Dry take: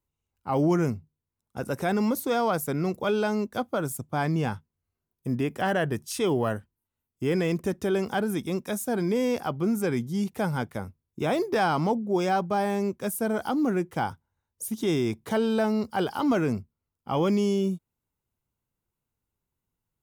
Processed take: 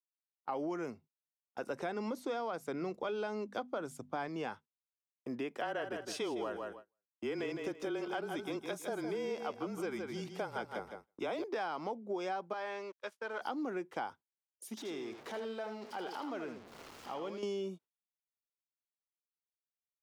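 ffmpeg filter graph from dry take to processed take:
ffmpeg -i in.wav -filter_complex "[0:a]asettb=1/sr,asplit=3[link_01][link_02][link_03];[link_01]atrim=end=1.704[link_04];[link_02]atrim=start=1.7:end=4.28,asetpts=PTS-STARTPTS,afade=type=in:duration=0.004:curve=qsin,afade=type=out:start_time=2.576:duration=0.004:curve=qsin,lowpass=11000,lowshelf=frequency=180:gain=11,bandreject=frequency=50:width_type=h:width=6,bandreject=frequency=100:width_type=h:width=6,bandreject=frequency=150:width_type=h:width=6,bandreject=frequency=200:width_type=h:width=6,bandreject=frequency=250:width_type=h:width=6[link_05];[link_03]atrim=start=4.276[link_06];[link_04][link_05]acrossfade=duration=0.004:curve1=hsin:curve2=qsin[link_07];[link_07][link_06]acrossfade=duration=0.004:curve1=qsin:curve2=hsin,asettb=1/sr,asplit=3[link_08][link_09][link_10];[link_08]atrim=end=5.614[link_11];[link_09]atrim=start=5.61:end=11.44,asetpts=PTS-STARTPTS,afade=type=in:duration=0.004:curve=qsin,afade=type=out:start_time=5.826:duration=0.004:curve=qsin,bandreject=frequency=1800:width=16,afreqshift=-26,aecho=1:1:160|320|480:0.398|0.0995|0.0249,atrim=end_sample=257103[link_12];[link_10]atrim=start=11.436[link_13];[link_11][link_12]acrossfade=duration=0.004:curve1=hsin:curve2=qsin[link_14];[link_14][link_13]acrossfade=duration=0.004:curve1=qsin:curve2=hsin,asettb=1/sr,asplit=3[link_15][link_16][link_17];[link_15]atrim=end=12.534[link_18];[link_16]atrim=start=12.53:end=13.41,asetpts=PTS-STARTPTS,afade=type=in:duration=0.004:curve=qsin,afade=type=out:start_time=0.876:duration=0.004:curve=qsin,acrossover=split=510 5500:gain=0.158 1 0.1[link_19][link_20][link_21];[link_19][link_20][link_21]amix=inputs=3:normalize=0,aeval=exprs='sgn(val(0))*max(abs(val(0))-0.00266,0)':channel_layout=same,asuperstop=centerf=720:order=4:qfactor=3.4[link_22];[link_17]atrim=start=13.406[link_23];[link_18][link_22]acrossfade=duration=0.004:curve1=hsin:curve2=qsin[link_24];[link_24][link_23]acrossfade=duration=0.004:curve1=qsin:curve2=hsin,asettb=1/sr,asplit=3[link_25][link_26][link_27];[link_25]atrim=end=14.774[link_28];[link_26]atrim=start=14.77:end=17.43,asetpts=PTS-STARTPTS,afade=type=in:duration=0.004:curve=qsin,afade=type=out:start_time=2.656:duration=0.004:curve=qsin,aeval=exprs='val(0)+0.5*0.02*sgn(val(0))':channel_layout=same,acompressor=threshold=-41dB:ratio=2:attack=3.2:release=140:knee=1:detection=peak,aecho=1:1:80:0.422,atrim=end_sample=117306[link_29];[link_27]atrim=start=17.426[link_30];[link_28][link_29]acrossfade=duration=0.004:curve1=hsin:curve2=qsin[link_31];[link_31][link_30]acrossfade=duration=0.004:curve1=qsin:curve2=hsin,agate=range=-26dB:threshold=-42dB:ratio=16:detection=peak,acrossover=split=280 6200:gain=0.0708 1 0.158[link_32][link_33][link_34];[link_32][link_33][link_34]amix=inputs=3:normalize=0,acompressor=threshold=-31dB:ratio=6,volume=-3.5dB" out.wav

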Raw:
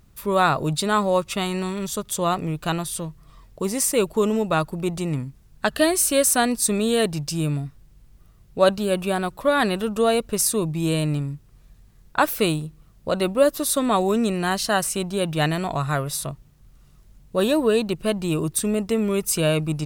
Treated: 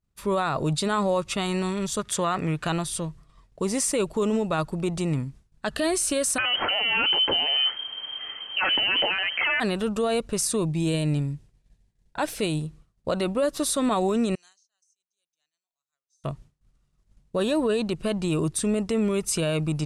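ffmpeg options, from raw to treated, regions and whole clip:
ffmpeg -i in.wav -filter_complex "[0:a]asettb=1/sr,asplit=3[link_01][link_02][link_03];[link_01]atrim=end=1.994[link_04];[link_02]atrim=start=1.99:end=2.67,asetpts=PTS-STARTPTS,afade=type=in:duration=0.004:curve=qsin,afade=type=out:start_time=0.676:duration=0.004:curve=qsin,highpass=47,equalizer=frequency=1700:width_type=o:width=1.1:gain=9.5[link_05];[link_03]atrim=start=2.666[link_06];[link_04][link_05]acrossfade=duration=0.004:curve1=hsin:curve2=qsin[link_07];[link_07][link_06]acrossfade=duration=0.004:curve1=qsin:curve2=hsin,asettb=1/sr,asplit=3[link_08][link_09][link_10];[link_08]atrim=end=6.384[link_11];[link_09]atrim=start=6.38:end=9.6,asetpts=PTS-STARTPTS,afade=type=in:duration=0.004:curve=qsin,afade=type=out:start_time=3.216:duration=0.004:curve=qsin,aeval=exprs='0.562*sin(PI/2*3.16*val(0)/0.562)':channel_layout=same,equalizer=frequency=2400:width_type=o:width=2.9:gain=14.5,lowpass=frequency=2700:width_type=q:width=0.5098,lowpass=frequency=2700:width_type=q:width=0.6013,lowpass=frequency=2700:width_type=q:width=0.9,lowpass=frequency=2700:width_type=q:width=2.563,afreqshift=-3200[link_12];[link_10]atrim=start=9.596[link_13];[link_11][link_12]acrossfade=duration=0.004:curve1=hsin:curve2=qsin[link_14];[link_14][link_13]acrossfade=duration=0.004:curve1=qsin:curve2=hsin,asettb=1/sr,asplit=3[link_15][link_16][link_17];[link_15]atrim=end=10.654[link_18];[link_16]atrim=start=10.65:end=12.62,asetpts=PTS-STARTPTS,afade=type=in:duration=0.004:curve=qsin,afade=type=out:start_time=1.966:duration=0.004:curve=qsin,equalizer=frequency=1200:width_type=o:width=0.31:gain=-10,bandreject=frequency=1500:width=29[link_19];[link_17]atrim=start=12.616[link_20];[link_18][link_19]acrossfade=duration=0.004:curve1=hsin:curve2=qsin[link_21];[link_21][link_20]acrossfade=duration=0.004:curve1=qsin:curve2=hsin,asettb=1/sr,asplit=3[link_22][link_23][link_24];[link_22]atrim=end=14.354[link_25];[link_23]atrim=start=14.35:end=16.24,asetpts=PTS-STARTPTS,afade=type=in:duration=0.004:curve=qsin,afade=type=out:start_time=1.886:duration=0.004:curve=qsin,bandpass=frequency=6200:width_type=q:width=11,acompressor=threshold=-49dB:ratio=6:attack=3.2:release=140:knee=1:detection=peak[link_26];[link_24]atrim=start=16.236[link_27];[link_25][link_26]acrossfade=duration=0.004:curve1=hsin:curve2=qsin[link_28];[link_28][link_27]acrossfade=duration=0.004:curve1=qsin:curve2=hsin,agate=range=-33dB:threshold=-40dB:ratio=3:detection=peak,lowpass=frequency=10000:width=0.5412,lowpass=frequency=10000:width=1.3066,alimiter=limit=-16dB:level=0:latency=1:release=39" out.wav

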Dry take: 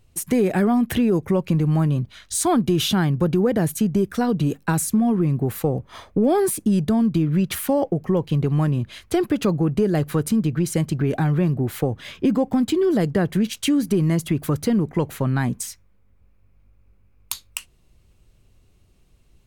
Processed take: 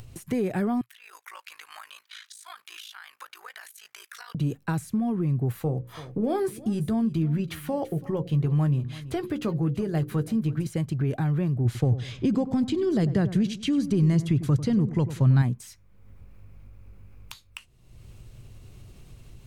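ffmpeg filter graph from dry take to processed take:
ffmpeg -i in.wav -filter_complex "[0:a]asettb=1/sr,asplit=3[link_01][link_02][link_03];[link_01]atrim=end=0.814[link_04];[link_02]atrim=start=0.81:end=4.35,asetpts=PTS-STARTPTS,afade=type=in:duration=0.004:curve=qsin,afade=type=out:start_time=3.536:duration=0.004:curve=qsin,highpass=frequency=1300:width=0.5412,highpass=frequency=1300:width=1.3066,acompressor=threshold=-37dB:ratio=12:attack=3.2:release=140:knee=1:detection=peak,aeval=exprs='val(0)*sin(2*PI*27*n/s)':channel_layout=same[link_05];[link_03]atrim=start=4.346[link_06];[link_04][link_05]acrossfade=duration=0.004:curve1=hsin:curve2=qsin[link_07];[link_07][link_06]acrossfade=duration=0.004:curve1=qsin:curve2=hsin,asettb=1/sr,asplit=3[link_08][link_09][link_10];[link_08]atrim=end=5.544[link_11];[link_09]atrim=start=5.54:end=10.67,asetpts=PTS-STARTPTS,afade=type=in:duration=0.004:curve=qsin,afade=type=out:start_time=5.126:duration=0.004:curve=qsin,bandreject=frequency=60:width_type=h:width=6,bandreject=frequency=120:width_type=h:width=6,bandreject=frequency=180:width_type=h:width=6,bandreject=frequency=240:width_type=h:width=6,bandreject=frequency=300:width_type=h:width=6,bandreject=frequency=360:width_type=h:width=6,bandreject=frequency=420:width_type=h:width=6,bandreject=frequency=480:width_type=h:width=6,bandreject=frequency=540:width_type=h:width=6,asplit=2[link_12][link_13];[link_13]adelay=13,volume=-11dB[link_14];[link_12][link_14]amix=inputs=2:normalize=0,atrim=end_sample=226233,aecho=1:1:333:0.106,atrim=end_sample=226233[link_15];[link_10]atrim=start=10.666[link_16];[link_11][link_15]acrossfade=duration=0.004:curve1=hsin:curve2=qsin[link_17];[link_17][link_16]acrossfade=duration=0.004:curve1=qsin:curve2=hsin,asettb=1/sr,asplit=3[link_18][link_19][link_20];[link_18]atrim=end=11.654[link_21];[link_19]atrim=start=11.65:end=15.42,asetpts=PTS-STARTPTS,afade=type=in:duration=0.004:curve=qsin,afade=type=out:start_time=3.766:duration=0.004:curve=qsin,lowpass=5800,bass=frequency=250:gain=6,treble=frequency=4000:gain=12,asplit=2[link_22][link_23];[link_23]adelay=97,lowpass=frequency=950:poles=1,volume=-12dB,asplit=2[link_24][link_25];[link_25]adelay=97,lowpass=frequency=950:poles=1,volume=0.42,asplit=2[link_26][link_27];[link_27]adelay=97,lowpass=frequency=950:poles=1,volume=0.42,asplit=2[link_28][link_29];[link_29]adelay=97,lowpass=frequency=950:poles=1,volume=0.42[link_30];[link_22][link_24][link_26][link_28][link_30]amix=inputs=5:normalize=0,atrim=end_sample=166257[link_31];[link_20]atrim=start=15.416[link_32];[link_21][link_31]acrossfade=duration=0.004:curve1=hsin:curve2=qsin[link_33];[link_33][link_32]acrossfade=duration=0.004:curve1=qsin:curve2=hsin,acompressor=mode=upward:threshold=-24dB:ratio=2.5,equalizer=frequency=120:width_type=o:width=0.5:gain=9,acrossover=split=4000[link_34][link_35];[link_35]acompressor=threshold=-35dB:ratio=4:attack=1:release=60[link_36];[link_34][link_36]amix=inputs=2:normalize=0,volume=-8dB" out.wav

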